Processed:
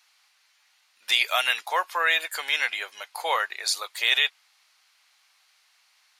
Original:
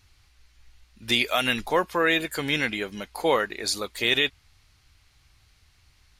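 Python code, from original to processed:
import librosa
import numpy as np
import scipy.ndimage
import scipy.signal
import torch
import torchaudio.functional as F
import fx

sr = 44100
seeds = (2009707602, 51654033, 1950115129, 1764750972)

y = scipy.signal.sosfilt(scipy.signal.butter(4, 700.0, 'highpass', fs=sr, output='sos'), x)
y = y * librosa.db_to_amplitude(1.5)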